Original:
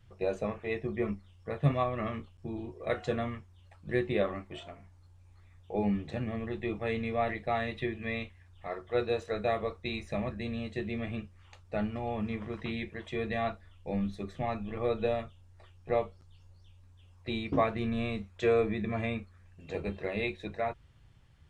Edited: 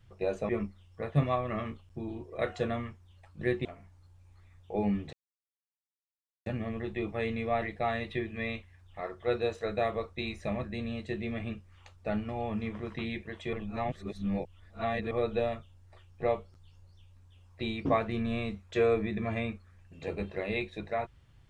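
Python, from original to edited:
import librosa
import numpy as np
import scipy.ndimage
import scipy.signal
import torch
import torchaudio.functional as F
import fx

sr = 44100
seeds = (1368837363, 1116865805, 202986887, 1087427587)

y = fx.edit(x, sr, fx.cut(start_s=0.49, length_s=0.48),
    fx.cut(start_s=4.13, length_s=0.52),
    fx.insert_silence(at_s=6.13, length_s=1.33),
    fx.reverse_span(start_s=13.2, length_s=1.58), tone=tone)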